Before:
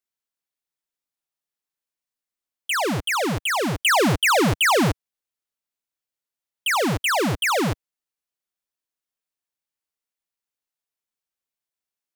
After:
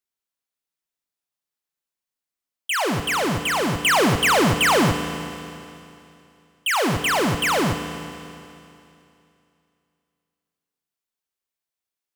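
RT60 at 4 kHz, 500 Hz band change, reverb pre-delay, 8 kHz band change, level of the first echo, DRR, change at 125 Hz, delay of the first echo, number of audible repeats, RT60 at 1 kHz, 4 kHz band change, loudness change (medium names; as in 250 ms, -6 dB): 2.7 s, +1.0 dB, 23 ms, +1.0 dB, no echo, 7.0 dB, +1.0 dB, no echo, no echo, 2.7 s, +1.0 dB, +0.5 dB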